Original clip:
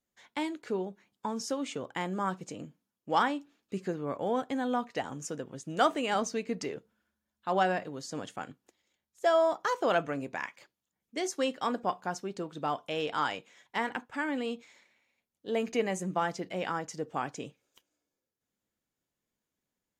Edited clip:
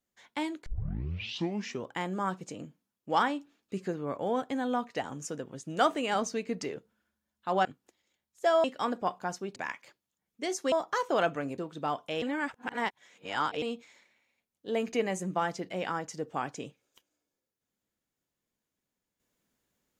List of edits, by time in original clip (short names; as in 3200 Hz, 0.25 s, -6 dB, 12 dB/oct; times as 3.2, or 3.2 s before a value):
0.66 tape start 1.24 s
7.65–8.45 cut
9.44–10.3 swap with 11.46–12.38
13.02–14.42 reverse